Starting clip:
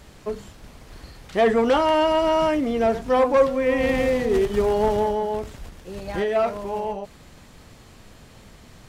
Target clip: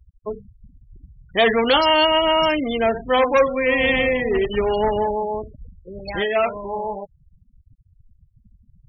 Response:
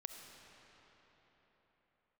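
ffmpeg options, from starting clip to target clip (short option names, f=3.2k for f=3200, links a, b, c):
-af "afftfilt=real='re*gte(hypot(re,im),0.0316)':imag='im*gte(hypot(re,im),0.0316)':win_size=1024:overlap=0.75,crystalizer=i=6.5:c=0,aemphasis=mode=production:type=75fm"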